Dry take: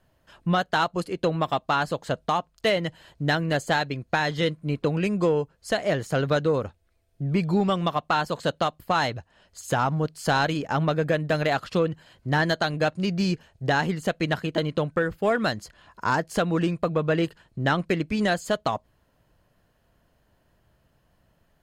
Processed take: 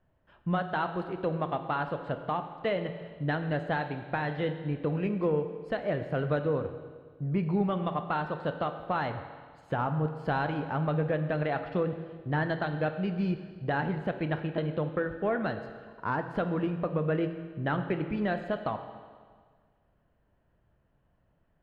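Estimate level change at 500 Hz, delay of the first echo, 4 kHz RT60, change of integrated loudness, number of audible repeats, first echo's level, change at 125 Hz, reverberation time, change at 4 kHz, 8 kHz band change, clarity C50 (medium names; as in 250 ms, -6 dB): -5.5 dB, no echo, 1.6 s, -6.0 dB, no echo, no echo, -4.0 dB, 1.7 s, -15.0 dB, under -30 dB, 9.0 dB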